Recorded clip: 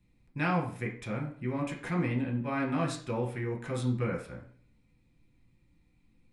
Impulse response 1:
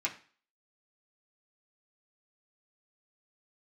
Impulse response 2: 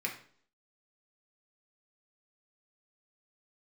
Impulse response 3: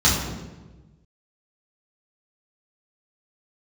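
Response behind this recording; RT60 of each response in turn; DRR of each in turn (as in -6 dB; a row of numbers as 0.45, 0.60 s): 2; 0.40, 0.55, 1.2 s; -4.0, -0.5, -8.0 dB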